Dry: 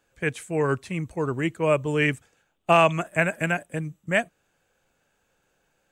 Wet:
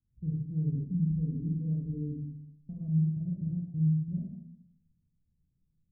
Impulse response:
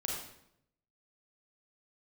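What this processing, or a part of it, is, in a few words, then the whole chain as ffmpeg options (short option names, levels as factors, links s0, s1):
club heard from the street: -filter_complex "[0:a]asettb=1/sr,asplit=3[s0][s1][s2];[s0]atrim=end=0.694[s3];[s1]atrim=start=0.69:end=2.81,asetpts=PTS-STARTPTS,afade=t=in:d=0.004:c=qsin,afade=t=out:st=2.116:d=0.004:c=qsin,aecho=1:1:4.2:0.83,atrim=end_sample=93492[s4];[s2]atrim=start=2.806[s5];[s3][s4]acrossfade=d=0.004:c1=hsin:c2=qsin[s6];[s6][s5]acrossfade=d=0.004:c1=qsin:c2=hsin,alimiter=limit=0.178:level=0:latency=1:release=73,lowpass=f=180:w=0.5412,lowpass=f=180:w=1.3066[s7];[1:a]atrim=start_sample=2205[s8];[s7][s8]afir=irnorm=-1:irlink=0"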